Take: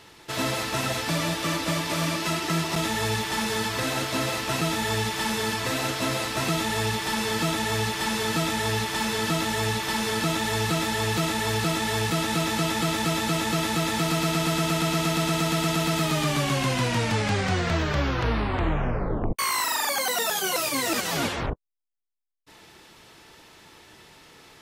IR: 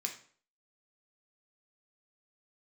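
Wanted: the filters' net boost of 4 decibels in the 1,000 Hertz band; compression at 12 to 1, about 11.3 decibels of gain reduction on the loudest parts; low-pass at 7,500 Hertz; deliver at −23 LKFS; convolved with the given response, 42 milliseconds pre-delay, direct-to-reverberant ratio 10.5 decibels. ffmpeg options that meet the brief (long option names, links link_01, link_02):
-filter_complex "[0:a]lowpass=7500,equalizer=frequency=1000:width_type=o:gain=5,acompressor=threshold=-31dB:ratio=12,asplit=2[link_01][link_02];[1:a]atrim=start_sample=2205,adelay=42[link_03];[link_02][link_03]afir=irnorm=-1:irlink=0,volume=-11dB[link_04];[link_01][link_04]amix=inputs=2:normalize=0,volume=11dB"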